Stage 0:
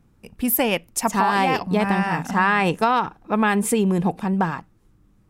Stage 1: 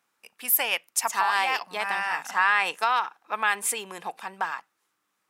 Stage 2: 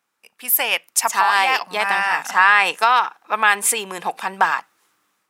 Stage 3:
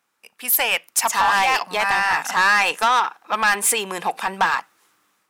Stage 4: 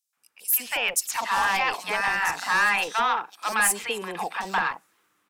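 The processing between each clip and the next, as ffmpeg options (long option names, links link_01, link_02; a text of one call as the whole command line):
ffmpeg -i in.wav -af "highpass=1100" out.wav
ffmpeg -i in.wav -af "dynaudnorm=framelen=210:gausssize=5:maxgain=14dB" out.wav
ffmpeg -i in.wav -af "asoftclip=type=tanh:threshold=-14dB,volume=2.5dB" out.wav
ffmpeg -i in.wav -filter_complex "[0:a]acrossover=split=800|4400[link_01][link_02][link_03];[link_02]adelay=130[link_04];[link_01]adelay=170[link_05];[link_05][link_04][link_03]amix=inputs=3:normalize=0,volume=-4dB" out.wav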